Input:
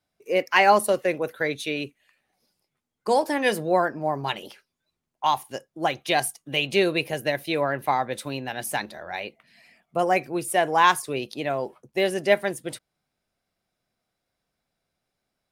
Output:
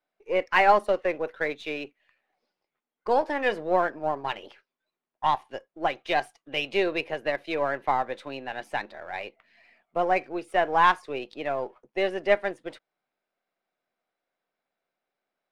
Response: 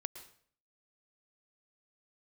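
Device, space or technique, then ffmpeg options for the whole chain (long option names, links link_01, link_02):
crystal radio: -af "highpass=360,lowpass=2700,aeval=exprs='if(lt(val(0),0),0.708*val(0),val(0))':channel_layout=same"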